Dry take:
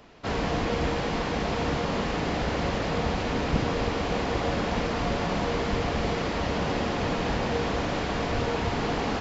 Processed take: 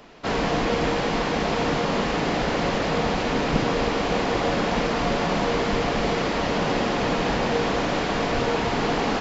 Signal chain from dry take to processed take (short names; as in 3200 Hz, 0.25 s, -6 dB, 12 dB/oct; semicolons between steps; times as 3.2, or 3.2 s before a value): bell 76 Hz -12.5 dB 0.96 oct; gain +5 dB